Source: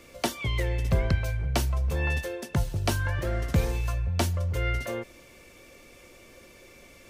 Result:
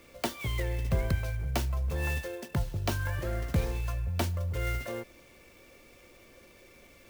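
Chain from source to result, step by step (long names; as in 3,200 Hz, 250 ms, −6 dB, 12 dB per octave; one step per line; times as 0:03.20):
converter with an unsteady clock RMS 0.025 ms
level −4 dB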